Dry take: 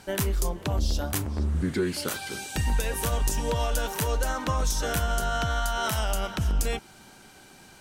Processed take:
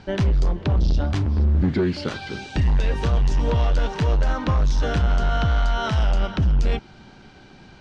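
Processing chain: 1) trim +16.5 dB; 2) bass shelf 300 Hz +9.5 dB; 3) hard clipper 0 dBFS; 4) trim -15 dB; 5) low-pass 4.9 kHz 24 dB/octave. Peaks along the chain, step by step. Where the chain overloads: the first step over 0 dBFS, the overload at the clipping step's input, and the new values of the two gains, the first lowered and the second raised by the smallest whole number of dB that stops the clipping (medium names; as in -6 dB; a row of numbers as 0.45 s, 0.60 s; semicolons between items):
+0.5 dBFS, +8.0 dBFS, 0.0 dBFS, -15.0 dBFS, -14.0 dBFS; step 1, 8.0 dB; step 1 +8.5 dB, step 4 -7 dB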